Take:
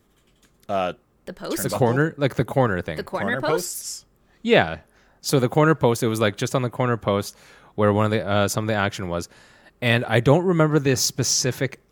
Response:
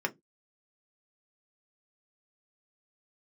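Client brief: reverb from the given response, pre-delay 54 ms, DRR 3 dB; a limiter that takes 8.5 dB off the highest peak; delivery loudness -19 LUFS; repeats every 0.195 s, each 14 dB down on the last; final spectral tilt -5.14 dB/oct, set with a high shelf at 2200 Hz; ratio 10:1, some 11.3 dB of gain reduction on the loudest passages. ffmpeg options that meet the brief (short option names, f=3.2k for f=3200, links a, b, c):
-filter_complex "[0:a]highshelf=f=2.2k:g=-7.5,acompressor=threshold=-24dB:ratio=10,alimiter=limit=-20dB:level=0:latency=1,aecho=1:1:195|390:0.2|0.0399,asplit=2[a][b];[1:a]atrim=start_sample=2205,adelay=54[c];[b][c]afir=irnorm=-1:irlink=0,volume=-9.5dB[d];[a][d]amix=inputs=2:normalize=0,volume=12dB"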